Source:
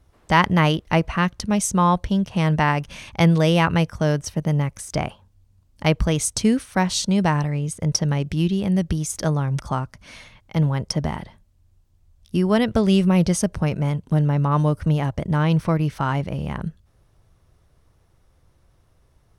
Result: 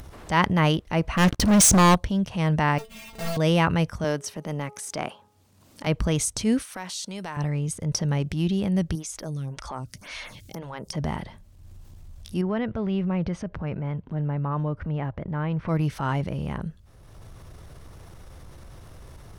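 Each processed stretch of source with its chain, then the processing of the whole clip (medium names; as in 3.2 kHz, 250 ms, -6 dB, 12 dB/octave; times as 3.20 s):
1.17–1.95 s: peaking EQ 310 Hz +9.5 dB 0.29 oct + compression 2:1, threshold -19 dBFS + waveshaping leveller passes 5
2.78–3.37 s: square wave that keeps the level + inharmonic resonator 220 Hz, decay 0.2 s, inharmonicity 0.002
4.04–5.87 s: high-pass 240 Hz + de-hum 418.2 Hz, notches 3
6.62–7.37 s: high-pass 760 Hz 6 dB/octave + treble shelf 9.9 kHz +6.5 dB + compression 2:1, threshold -35 dBFS
8.95–10.93 s: treble shelf 3.3 kHz +10.5 dB + compression 2:1, threshold -28 dBFS + lamp-driven phase shifter 1.9 Hz
12.41–15.68 s: Chebyshev low-pass 2 kHz + compression 1.5:1, threshold -27 dBFS
whole clip: upward compressor, threshold -25 dBFS; transient shaper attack -6 dB, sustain +3 dB; trim -2.5 dB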